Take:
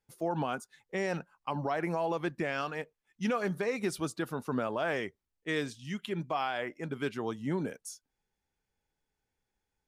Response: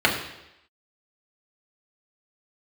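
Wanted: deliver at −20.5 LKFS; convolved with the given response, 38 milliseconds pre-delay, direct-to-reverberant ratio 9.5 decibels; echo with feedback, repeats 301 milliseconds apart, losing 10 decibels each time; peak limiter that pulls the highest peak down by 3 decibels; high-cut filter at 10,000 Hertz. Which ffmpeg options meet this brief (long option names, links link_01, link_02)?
-filter_complex "[0:a]lowpass=10000,alimiter=level_in=0.5dB:limit=-24dB:level=0:latency=1,volume=-0.5dB,aecho=1:1:301|602|903|1204:0.316|0.101|0.0324|0.0104,asplit=2[link_01][link_02];[1:a]atrim=start_sample=2205,adelay=38[link_03];[link_02][link_03]afir=irnorm=-1:irlink=0,volume=-28.5dB[link_04];[link_01][link_04]amix=inputs=2:normalize=0,volume=15dB"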